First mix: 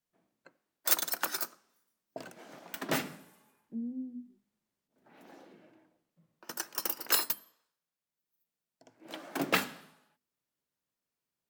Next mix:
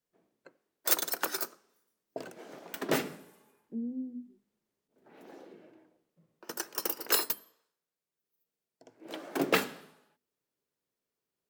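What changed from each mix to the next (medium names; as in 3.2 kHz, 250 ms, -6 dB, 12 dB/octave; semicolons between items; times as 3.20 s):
master: add peaking EQ 420 Hz +8.5 dB 0.72 oct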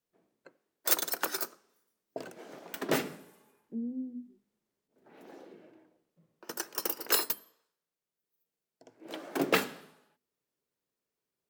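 no change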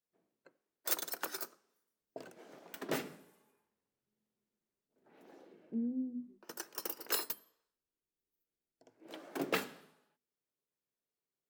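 speech: entry +2.00 s; background -7.5 dB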